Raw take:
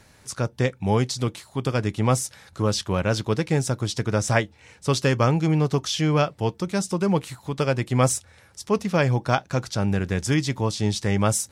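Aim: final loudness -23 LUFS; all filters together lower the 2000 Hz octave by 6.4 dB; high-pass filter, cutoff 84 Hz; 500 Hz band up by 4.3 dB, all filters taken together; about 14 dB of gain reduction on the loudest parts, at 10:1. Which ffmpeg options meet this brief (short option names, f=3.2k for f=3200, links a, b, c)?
-af "highpass=84,equalizer=f=500:t=o:g=5.5,equalizer=f=2k:t=o:g=-9,acompressor=threshold=-28dB:ratio=10,volume=11dB"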